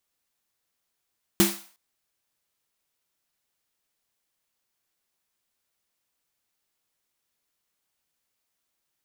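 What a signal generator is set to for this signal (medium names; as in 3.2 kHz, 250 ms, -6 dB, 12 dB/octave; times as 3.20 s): snare drum length 0.36 s, tones 200 Hz, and 340 Hz, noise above 590 Hz, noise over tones -3 dB, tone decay 0.28 s, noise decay 0.45 s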